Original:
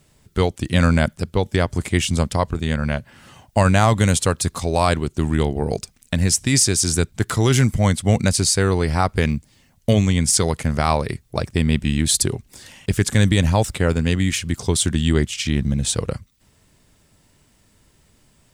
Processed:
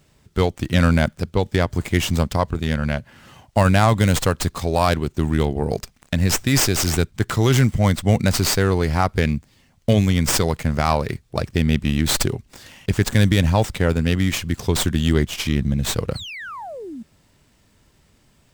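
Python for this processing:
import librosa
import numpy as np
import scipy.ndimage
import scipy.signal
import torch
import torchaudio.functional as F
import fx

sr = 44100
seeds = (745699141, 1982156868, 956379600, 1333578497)

y = fx.spec_paint(x, sr, seeds[0], shape='fall', start_s=16.15, length_s=0.88, low_hz=210.0, high_hz=4500.0, level_db=-33.0)
y = fx.running_max(y, sr, window=3)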